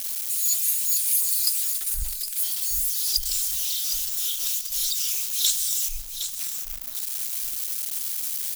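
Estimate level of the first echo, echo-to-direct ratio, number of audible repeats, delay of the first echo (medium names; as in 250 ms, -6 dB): -9.0 dB, -8.5 dB, 2, 762 ms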